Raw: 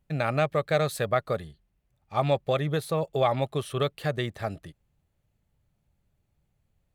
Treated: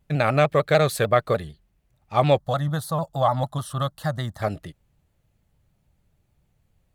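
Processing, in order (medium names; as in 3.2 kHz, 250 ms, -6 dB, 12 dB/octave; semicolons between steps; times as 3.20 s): 2.38–4.42 s: static phaser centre 1 kHz, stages 4; vibrato with a chosen wave saw down 6.7 Hz, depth 100 cents; trim +6 dB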